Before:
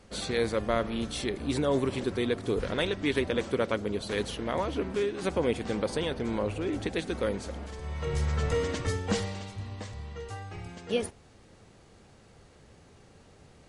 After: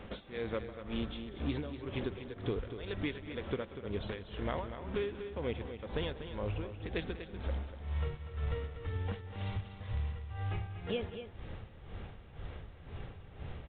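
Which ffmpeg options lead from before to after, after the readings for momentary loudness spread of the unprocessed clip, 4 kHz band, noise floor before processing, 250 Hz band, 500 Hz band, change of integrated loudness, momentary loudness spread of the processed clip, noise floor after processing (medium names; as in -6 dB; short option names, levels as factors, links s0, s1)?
12 LU, -10.0 dB, -57 dBFS, -9.0 dB, -10.0 dB, -9.0 dB, 10 LU, -52 dBFS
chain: -af "asubboost=boost=3:cutoff=120,acompressor=threshold=0.01:ratio=8,tremolo=f=2:d=0.95,aresample=16000,acrusher=bits=5:mode=log:mix=0:aa=0.000001,aresample=44100,aecho=1:1:190|242:0.126|0.316,aresample=8000,aresample=44100,volume=2.66"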